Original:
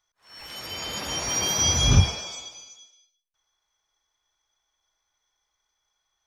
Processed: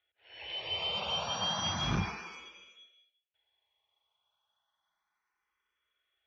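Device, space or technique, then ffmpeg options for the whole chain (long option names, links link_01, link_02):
barber-pole phaser into a guitar amplifier: -filter_complex "[0:a]asplit=2[link_01][link_02];[link_02]afreqshift=0.32[link_03];[link_01][link_03]amix=inputs=2:normalize=1,asoftclip=type=tanh:threshold=-19dB,highpass=86,equalizer=frequency=130:width_type=q:width=4:gain=-10,equalizer=frequency=270:width_type=q:width=4:gain=-9,equalizer=frequency=2800:width_type=q:width=4:gain=7,lowpass=frequency=3500:width=0.5412,lowpass=frequency=3500:width=1.3066"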